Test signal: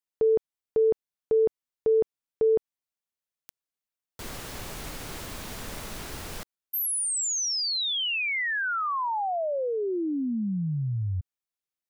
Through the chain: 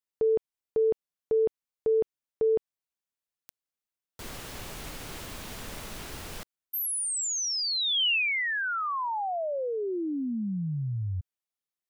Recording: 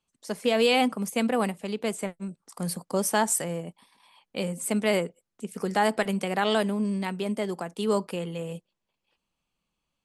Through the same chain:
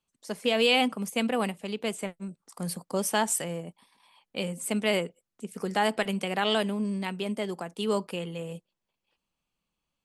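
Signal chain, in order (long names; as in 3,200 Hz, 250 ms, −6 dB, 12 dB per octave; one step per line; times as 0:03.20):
dynamic equaliser 2,900 Hz, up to +6 dB, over −47 dBFS, Q 2
level −2.5 dB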